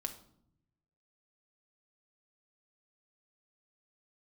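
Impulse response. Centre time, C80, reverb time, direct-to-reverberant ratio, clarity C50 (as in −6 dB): 10 ms, 15.5 dB, 0.70 s, 4.5 dB, 11.5 dB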